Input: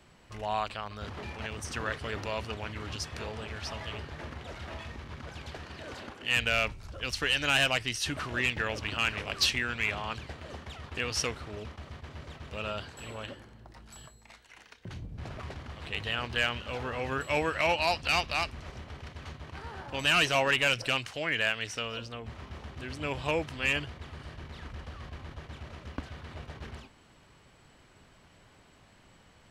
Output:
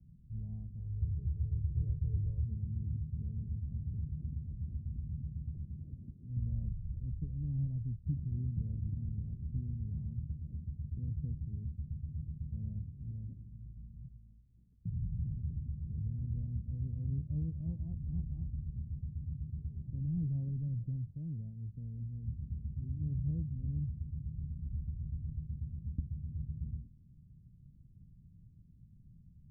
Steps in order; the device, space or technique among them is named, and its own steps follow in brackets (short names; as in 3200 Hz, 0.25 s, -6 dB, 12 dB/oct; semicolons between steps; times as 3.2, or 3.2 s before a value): 0.79–2.46 comb 2.2 ms, depth 97%; the neighbour's flat through the wall (LPF 170 Hz 24 dB/oct; bell 160 Hz +3.5 dB); gain +4.5 dB